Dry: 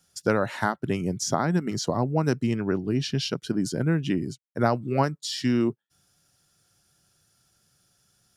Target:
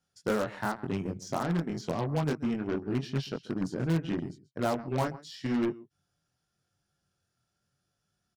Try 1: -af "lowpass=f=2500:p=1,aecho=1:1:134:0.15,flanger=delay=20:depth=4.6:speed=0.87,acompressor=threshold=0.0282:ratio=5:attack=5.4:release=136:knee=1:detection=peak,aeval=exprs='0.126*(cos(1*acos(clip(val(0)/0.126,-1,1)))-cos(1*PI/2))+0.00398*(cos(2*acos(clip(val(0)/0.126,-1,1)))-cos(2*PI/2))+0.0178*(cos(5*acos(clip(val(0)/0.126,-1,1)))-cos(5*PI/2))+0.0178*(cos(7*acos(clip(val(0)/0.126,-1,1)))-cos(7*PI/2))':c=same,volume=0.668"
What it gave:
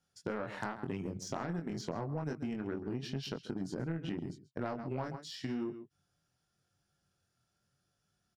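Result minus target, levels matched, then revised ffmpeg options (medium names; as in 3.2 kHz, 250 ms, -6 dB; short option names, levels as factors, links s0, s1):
compression: peak gain reduction +12 dB
-af "lowpass=f=2500:p=1,aecho=1:1:134:0.15,flanger=delay=20:depth=4.6:speed=0.87,aeval=exprs='0.126*(cos(1*acos(clip(val(0)/0.126,-1,1)))-cos(1*PI/2))+0.00398*(cos(2*acos(clip(val(0)/0.126,-1,1)))-cos(2*PI/2))+0.0178*(cos(5*acos(clip(val(0)/0.126,-1,1)))-cos(5*PI/2))+0.0178*(cos(7*acos(clip(val(0)/0.126,-1,1)))-cos(7*PI/2))':c=same,volume=0.668"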